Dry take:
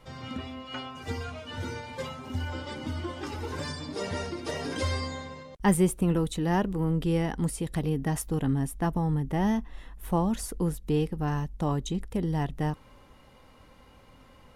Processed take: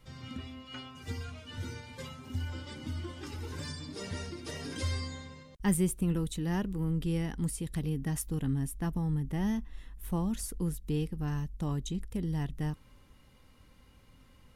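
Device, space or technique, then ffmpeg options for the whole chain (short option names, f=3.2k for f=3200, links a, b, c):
smiley-face EQ: -af "lowshelf=f=190:g=3.5,equalizer=f=710:t=o:w=1.7:g=-8,highshelf=f=6.9k:g=5,volume=-5dB"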